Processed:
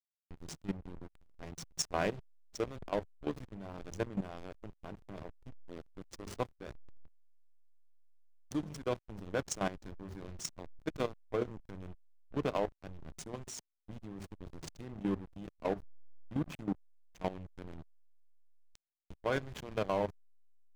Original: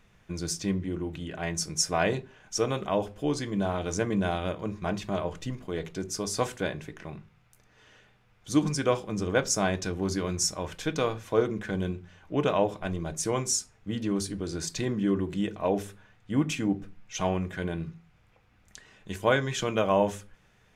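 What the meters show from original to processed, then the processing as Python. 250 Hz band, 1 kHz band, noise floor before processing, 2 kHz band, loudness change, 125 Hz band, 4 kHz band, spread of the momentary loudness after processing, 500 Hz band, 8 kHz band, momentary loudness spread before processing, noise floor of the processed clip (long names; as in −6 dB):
−11.5 dB, −10.0 dB, −63 dBFS, −11.5 dB, −10.5 dB, −12.0 dB, −13.0 dB, 16 LU, −10.0 dB, −15.0 dB, 10 LU, −83 dBFS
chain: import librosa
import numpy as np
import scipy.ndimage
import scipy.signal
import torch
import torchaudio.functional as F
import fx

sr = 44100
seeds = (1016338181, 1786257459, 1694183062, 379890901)

y = fx.backlash(x, sr, play_db=-22.5)
y = fx.level_steps(y, sr, step_db=14)
y = F.gain(torch.from_numpy(y), -3.0).numpy()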